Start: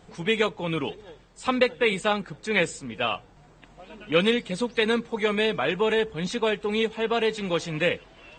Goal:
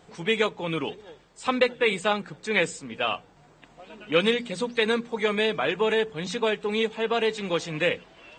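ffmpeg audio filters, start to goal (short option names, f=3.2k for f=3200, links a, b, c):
-af "lowshelf=f=80:g=-11.5,bandreject=f=60:t=h:w=6,bandreject=f=120:t=h:w=6,bandreject=f=180:t=h:w=6,bandreject=f=240:t=h:w=6"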